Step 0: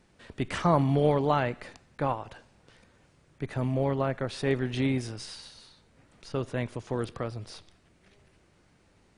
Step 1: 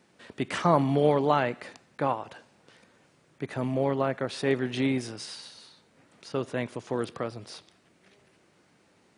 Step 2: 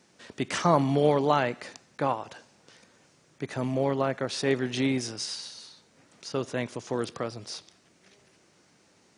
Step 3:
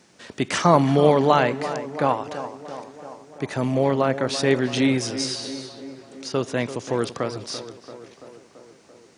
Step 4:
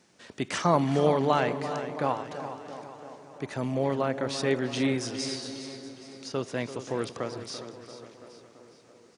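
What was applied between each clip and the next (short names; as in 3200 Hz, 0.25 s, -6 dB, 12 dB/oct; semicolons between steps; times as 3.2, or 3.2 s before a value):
HPF 170 Hz 12 dB/oct; gain +2 dB
bell 6000 Hz +9 dB 0.91 oct
tape echo 0.337 s, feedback 72%, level -11 dB, low-pass 1900 Hz; gain +6 dB
feedback echo 0.411 s, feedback 49%, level -12.5 dB; gain -7 dB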